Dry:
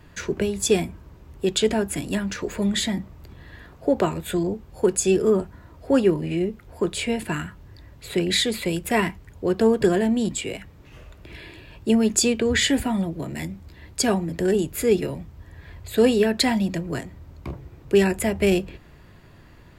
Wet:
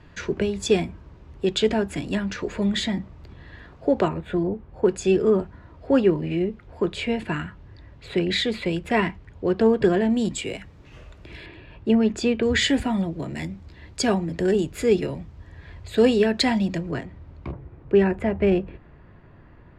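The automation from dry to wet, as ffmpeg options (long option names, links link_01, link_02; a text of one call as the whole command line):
ffmpeg -i in.wav -af "asetnsamples=nb_out_samples=441:pad=0,asendcmd='4.08 lowpass f 2000;4.86 lowpass f 3800;10.1 lowpass f 7300;11.46 lowpass f 2800;12.43 lowpass f 6000;16.91 lowpass f 3200;17.52 lowpass f 1800',lowpass=4900" out.wav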